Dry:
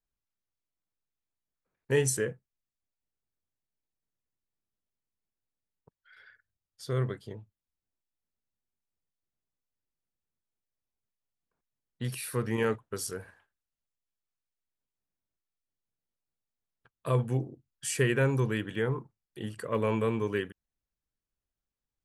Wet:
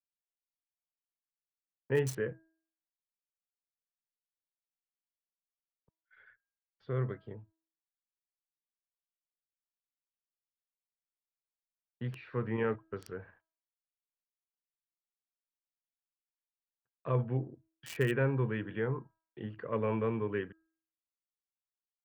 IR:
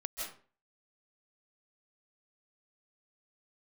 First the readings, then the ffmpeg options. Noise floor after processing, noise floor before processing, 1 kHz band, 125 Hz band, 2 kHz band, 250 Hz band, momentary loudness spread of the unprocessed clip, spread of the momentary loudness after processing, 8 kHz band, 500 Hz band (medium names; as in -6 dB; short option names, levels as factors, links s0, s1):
under -85 dBFS, under -85 dBFS, -4.0 dB, -3.5 dB, -5.0 dB, -3.5 dB, 15 LU, 15 LU, under -15 dB, -3.5 dB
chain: -filter_complex "[0:a]agate=range=0.0562:threshold=0.00141:ratio=16:detection=peak,lowpass=4500,bandreject=f=323.3:t=h:w=4,bandreject=f=646.6:t=h:w=4,bandreject=f=969.9:t=h:w=4,bandreject=f=1293.2:t=h:w=4,bandreject=f=1616.5:t=h:w=4,acrossover=split=100|2900[s0][s1][s2];[s2]acrusher=bits=5:mix=0:aa=0.000001[s3];[s0][s1][s3]amix=inputs=3:normalize=0,volume=0.668"